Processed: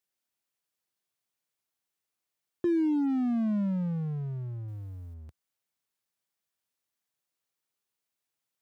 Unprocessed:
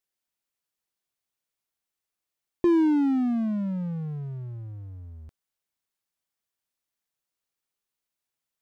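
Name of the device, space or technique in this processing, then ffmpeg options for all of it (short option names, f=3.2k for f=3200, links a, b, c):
clipper into limiter: -filter_complex "[0:a]asoftclip=type=hard:threshold=-18dB,alimiter=limit=-22.5dB:level=0:latency=1,highpass=f=74:w=0.5412,highpass=f=74:w=1.3066,asettb=1/sr,asplit=3[a][b][c];[a]atrim=end=4.684[d];[b]atrim=start=4.68:end=5.14,asetpts=PTS-STARTPTS,afade=t=in:d=0.004:c=qsin,afade=t=out:st=0.456:d=0.004:c=qsin,highshelf=f=3.2k:g=11[e];[c]atrim=start=5.136[f];[d][e]acrossfade=d=0.004:c1=hsin:c2=qsin[g];[g][f]acrossfade=d=0.004:c1=qsin:c2=hsin"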